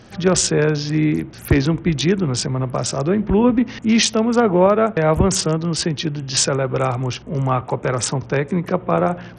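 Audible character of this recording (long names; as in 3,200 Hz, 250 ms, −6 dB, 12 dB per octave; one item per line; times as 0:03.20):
SBC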